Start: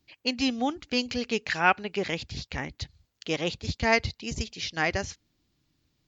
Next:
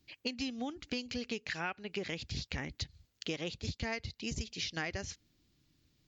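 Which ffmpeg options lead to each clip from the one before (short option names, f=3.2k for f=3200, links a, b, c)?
-af "equalizer=f=890:t=o:w=1.4:g=-5,acompressor=threshold=-35dB:ratio=10,volume=1dB"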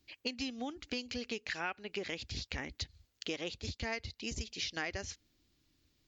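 -af "equalizer=f=150:t=o:w=0.84:g=-9"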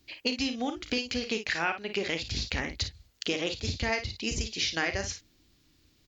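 -af "aecho=1:1:36|55:0.266|0.335,volume=8dB"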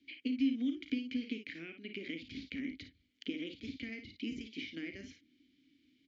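-filter_complex "[0:a]acrossover=split=530|1900[a][b][c];[a]acompressor=threshold=-34dB:ratio=4[d];[b]acompressor=threshold=-45dB:ratio=4[e];[c]acompressor=threshold=-45dB:ratio=4[f];[d][e][f]amix=inputs=3:normalize=0,asplit=3[g][h][i];[g]bandpass=f=270:t=q:w=8,volume=0dB[j];[h]bandpass=f=2.29k:t=q:w=8,volume=-6dB[k];[i]bandpass=f=3.01k:t=q:w=8,volume=-9dB[l];[j][k][l]amix=inputs=3:normalize=0,volume=7dB"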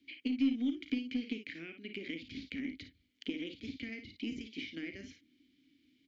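-af "aeval=exprs='0.075*(cos(1*acos(clip(val(0)/0.075,-1,1)))-cos(1*PI/2))+0.00119*(cos(4*acos(clip(val(0)/0.075,-1,1)))-cos(4*PI/2))+0.00075*(cos(7*acos(clip(val(0)/0.075,-1,1)))-cos(7*PI/2))':c=same,volume=1dB"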